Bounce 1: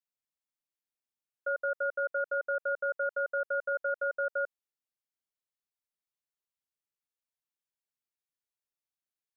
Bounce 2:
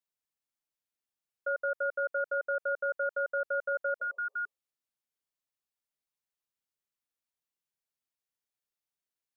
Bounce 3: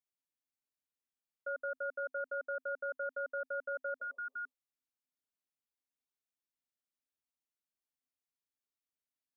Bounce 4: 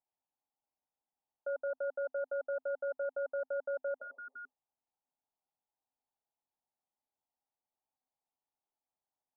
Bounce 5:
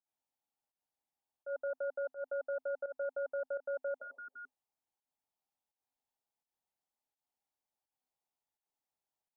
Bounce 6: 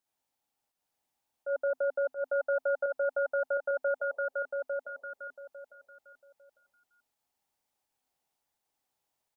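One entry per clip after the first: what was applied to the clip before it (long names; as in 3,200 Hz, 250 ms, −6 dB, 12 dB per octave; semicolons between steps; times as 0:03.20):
healed spectral selection 0:04.04–0:04.59, 410–1,200 Hz both
parametric band 260 Hz +12.5 dB 0.21 octaves; level −7 dB
low-pass with resonance 830 Hz, resonance Q 5.4
fake sidechain pumping 84 BPM, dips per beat 1, −16 dB, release 151 ms; level −1 dB
repeating echo 851 ms, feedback 22%, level −4 dB; level +7.5 dB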